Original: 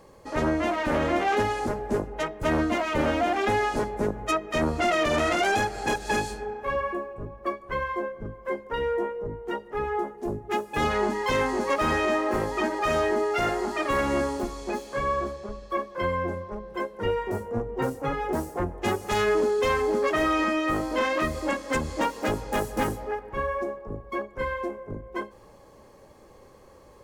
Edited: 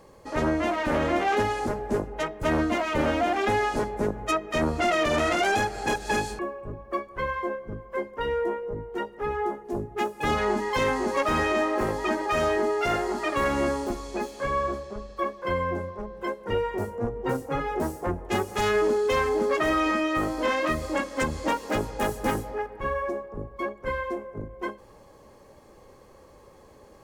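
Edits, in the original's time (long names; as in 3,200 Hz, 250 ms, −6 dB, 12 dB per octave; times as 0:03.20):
0:06.39–0:06.92: remove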